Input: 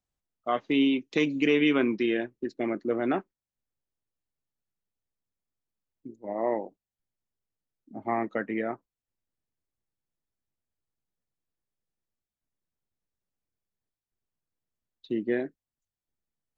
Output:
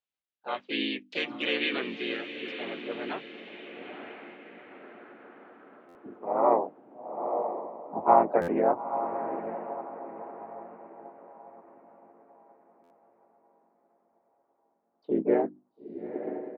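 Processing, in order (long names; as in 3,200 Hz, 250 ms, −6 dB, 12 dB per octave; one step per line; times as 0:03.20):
tilt shelving filter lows +10 dB, about 1,200 Hz
feedback delay with all-pass diffusion 923 ms, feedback 41%, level −9 dB
band-pass filter sweep 3,000 Hz → 850 Hz, 0:03.38–0:07.04
mains-hum notches 50/100/150/200/250/300 Hz
pitch-shifted copies added −4 semitones −6 dB, +3 semitones −5 dB, +4 semitones −12 dB
buffer that repeats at 0:05.88/0:08.41/0:12.83, samples 512, times 5
level +7 dB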